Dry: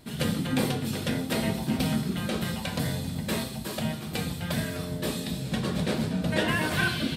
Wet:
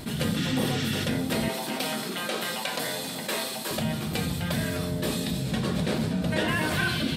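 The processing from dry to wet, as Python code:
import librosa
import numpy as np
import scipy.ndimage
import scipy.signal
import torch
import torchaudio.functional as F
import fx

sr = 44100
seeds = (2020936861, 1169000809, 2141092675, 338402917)

y = fx.spec_repair(x, sr, seeds[0], start_s=0.39, length_s=0.63, low_hz=1200.0, high_hz=8300.0, source='after')
y = fx.highpass(y, sr, hz=450.0, slope=12, at=(1.48, 3.71))
y = fx.env_flatten(y, sr, amount_pct=50)
y = F.gain(torch.from_numpy(y), -1.5).numpy()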